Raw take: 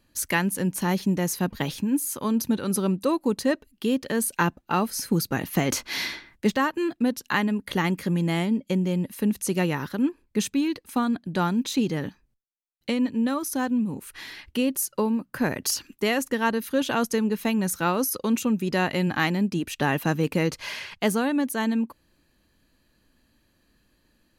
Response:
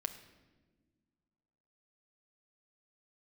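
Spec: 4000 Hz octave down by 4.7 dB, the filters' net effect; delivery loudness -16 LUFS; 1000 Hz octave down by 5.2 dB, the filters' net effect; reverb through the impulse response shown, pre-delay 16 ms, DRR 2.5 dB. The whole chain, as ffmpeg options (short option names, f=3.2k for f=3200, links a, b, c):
-filter_complex "[0:a]equalizer=f=1k:t=o:g=-6.5,equalizer=f=4k:t=o:g=-6,asplit=2[a][b];[1:a]atrim=start_sample=2205,adelay=16[c];[b][c]afir=irnorm=-1:irlink=0,volume=-2dB[d];[a][d]amix=inputs=2:normalize=0,volume=8.5dB"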